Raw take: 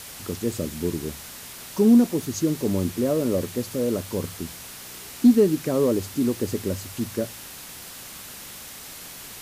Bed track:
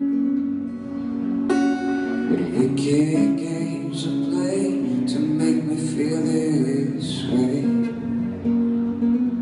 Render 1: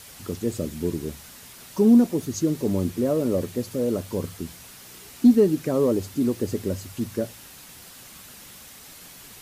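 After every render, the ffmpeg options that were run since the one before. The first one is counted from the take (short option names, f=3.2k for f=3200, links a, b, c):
-af "afftdn=nr=6:nf=-40"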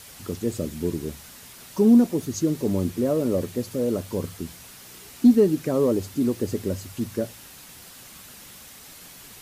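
-af anull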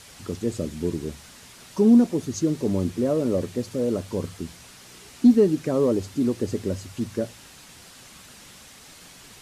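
-af "lowpass=8.9k"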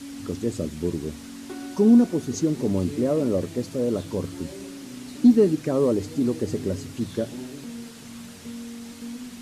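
-filter_complex "[1:a]volume=-17dB[a];[0:a][a]amix=inputs=2:normalize=0"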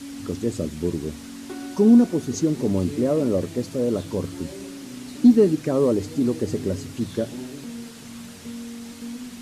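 -af "volume=1.5dB"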